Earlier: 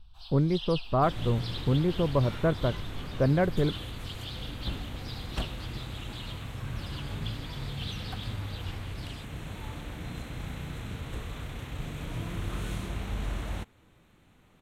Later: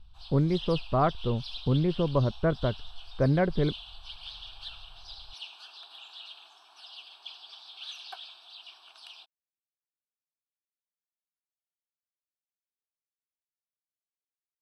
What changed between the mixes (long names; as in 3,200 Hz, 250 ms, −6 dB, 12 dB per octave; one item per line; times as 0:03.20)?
second sound: muted
master: add low-pass filter 9,500 Hz 12 dB per octave